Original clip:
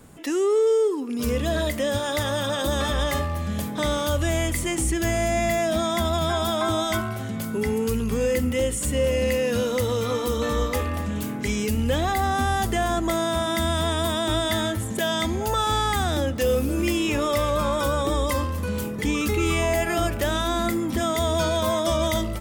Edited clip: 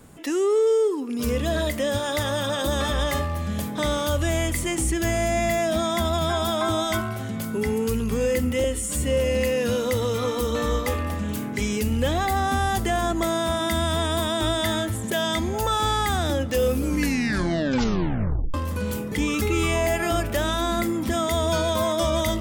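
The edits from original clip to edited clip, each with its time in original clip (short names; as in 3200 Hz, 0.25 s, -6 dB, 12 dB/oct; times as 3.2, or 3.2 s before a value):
8.64–8.9 stretch 1.5×
16.62 tape stop 1.79 s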